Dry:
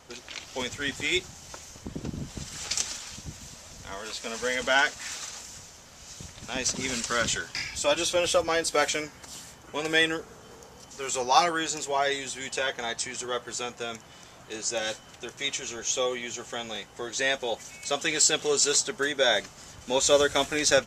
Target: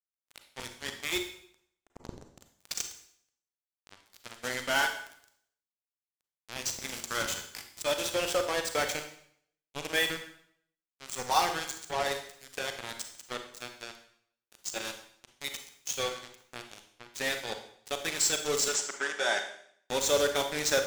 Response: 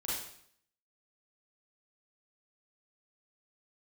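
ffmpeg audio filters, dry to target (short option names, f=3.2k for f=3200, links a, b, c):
-filter_complex "[0:a]acrusher=bits=3:mix=0:aa=0.5,asettb=1/sr,asplit=3[a][b][c];[a]atrim=end=18.684[d];[b]atrim=start=18.68:end=19.39,asetpts=PTS-STARTPTS,afade=t=in:d=0.004:c=qsin,afade=t=out:st=0.706:d=0.004:c=qsin,highpass=f=210:w=0.5412,highpass=f=210:w=1.3066,equalizer=f=270:t=q:w=4:g=-7,equalizer=f=500:t=q:w=4:g=-7,equalizer=f=810:t=q:w=4:g=4,equalizer=f=1.6k:t=q:w=4:g=4,equalizer=f=4.1k:t=q:w=4:g=-8,lowpass=f=8.6k:w=0.5412,lowpass=f=8.6k:w=1.3066[e];[c]atrim=start=19.386[f];[d][e]acrossfade=d=0.004:c1=hsin:c2=qsin[g];[g][f]acrossfade=d=0.004:c1=qsin:c2=hsin,asplit=2[h][i];[1:a]atrim=start_sample=2205[j];[i][j]afir=irnorm=-1:irlink=0,volume=-6.5dB[k];[h][k]amix=inputs=2:normalize=0,volume=-8dB"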